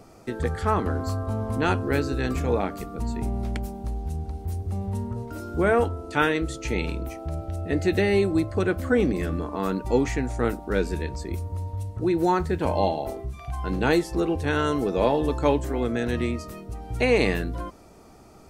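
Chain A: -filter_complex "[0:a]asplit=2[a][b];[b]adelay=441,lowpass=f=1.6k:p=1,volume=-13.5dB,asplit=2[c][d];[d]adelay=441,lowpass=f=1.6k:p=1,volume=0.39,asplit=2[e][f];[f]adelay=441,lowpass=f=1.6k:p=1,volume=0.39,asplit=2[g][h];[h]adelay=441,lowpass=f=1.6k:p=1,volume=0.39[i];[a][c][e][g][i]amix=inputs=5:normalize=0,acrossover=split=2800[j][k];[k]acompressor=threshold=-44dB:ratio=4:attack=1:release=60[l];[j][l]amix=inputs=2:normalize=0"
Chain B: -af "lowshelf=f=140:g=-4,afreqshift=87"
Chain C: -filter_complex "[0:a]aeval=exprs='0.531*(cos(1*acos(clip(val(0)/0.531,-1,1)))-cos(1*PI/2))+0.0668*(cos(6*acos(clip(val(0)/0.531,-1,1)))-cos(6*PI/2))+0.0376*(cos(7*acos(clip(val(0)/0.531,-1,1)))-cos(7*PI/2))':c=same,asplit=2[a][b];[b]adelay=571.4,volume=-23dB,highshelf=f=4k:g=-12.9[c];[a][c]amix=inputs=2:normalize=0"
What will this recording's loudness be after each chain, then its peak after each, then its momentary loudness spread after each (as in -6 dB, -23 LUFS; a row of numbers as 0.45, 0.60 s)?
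-26.0, -26.5, -28.5 LUFS; -6.5, -9.5, -6.5 dBFS; 10, 11, 13 LU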